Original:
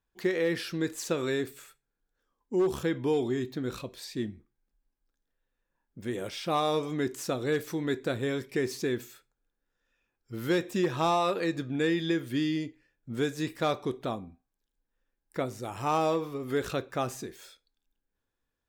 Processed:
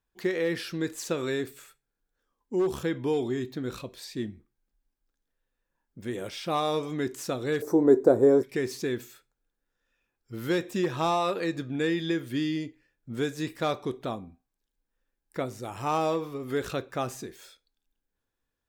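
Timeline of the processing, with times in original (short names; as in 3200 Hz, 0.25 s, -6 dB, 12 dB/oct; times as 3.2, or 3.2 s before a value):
7.62–8.43 EQ curve 150 Hz 0 dB, 400 Hz +14 dB, 880 Hz +10 dB, 1600 Hz -5 dB, 3000 Hz -22 dB, 5800 Hz -1 dB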